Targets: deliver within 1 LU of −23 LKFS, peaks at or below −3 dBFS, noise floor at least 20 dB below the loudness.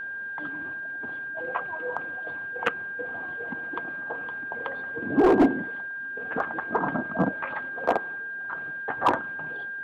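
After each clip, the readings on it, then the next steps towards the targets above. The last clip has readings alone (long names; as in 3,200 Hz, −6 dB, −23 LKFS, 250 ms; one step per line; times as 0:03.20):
share of clipped samples 0.4%; peaks flattened at −13.0 dBFS; interfering tone 1,600 Hz; level of the tone −32 dBFS; integrated loudness −28.5 LKFS; sample peak −13.0 dBFS; target loudness −23.0 LKFS
→ clipped peaks rebuilt −13 dBFS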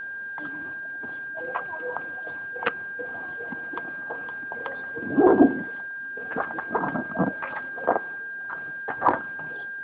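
share of clipped samples 0.0%; interfering tone 1,600 Hz; level of the tone −32 dBFS
→ notch filter 1,600 Hz, Q 30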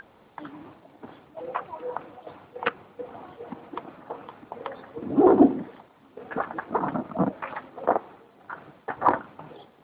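interfering tone none found; integrated loudness −26.5 LKFS; sample peak −4.0 dBFS; target loudness −23.0 LKFS
→ level +3.5 dB
brickwall limiter −3 dBFS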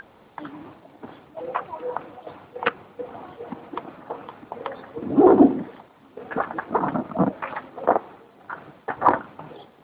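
integrated loudness −23.5 LKFS; sample peak −3.0 dBFS; background noise floor −53 dBFS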